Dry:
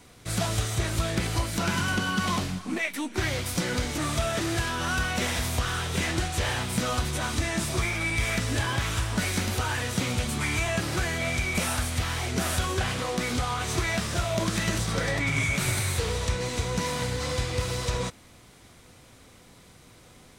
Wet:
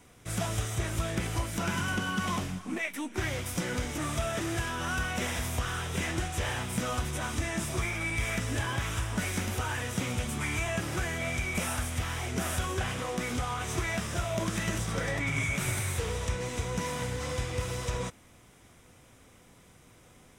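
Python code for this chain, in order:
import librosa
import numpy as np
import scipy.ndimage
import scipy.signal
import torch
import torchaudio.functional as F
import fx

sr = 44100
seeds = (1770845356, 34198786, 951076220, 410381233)

y = fx.peak_eq(x, sr, hz=4300.0, db=-10.5, octaves=0.31)
y = F.gain(torch.from_numpy(y), -4.0).numpy()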